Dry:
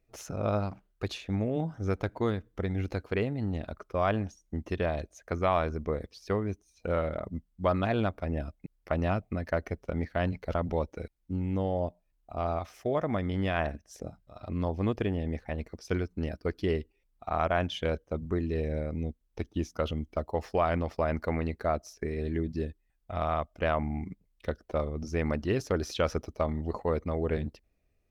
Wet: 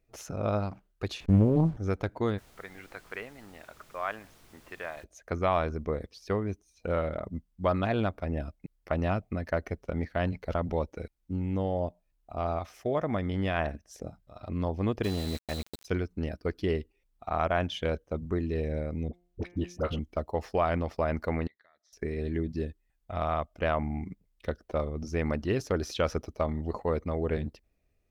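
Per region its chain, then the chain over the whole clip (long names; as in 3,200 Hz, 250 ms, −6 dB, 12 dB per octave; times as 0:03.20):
0:01.20–0:01.77: hold until the input has moved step −47 dBFS + spectral tilt −3.5 dB per octave + highs frequency-modulated by the lows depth 0.54 ms
0:02.37–0:05.03: resonant band-pass 1,600 Hz, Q 1.2 + background noise pink −58 dBFS
0:15.03–0:15.84: steady tone 4,000 Hz −43 dBFS + centre clipping without the shift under −36 dBFS
0:19.08–0:19.99: high-shelf EQ 6,300 Hz −4.5 dB + hum removal 176.1 Hz, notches 17 + all-pass dispersion highs, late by 53 ms, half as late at 660 Hz
0:21.47–0:21.93: pair of resonant band-passes 2,600 Hz, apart 0.92 octaves + downward compressor, threshold −60 dBFS + high-frequency loss of the air 53 metres
whole clip: no processing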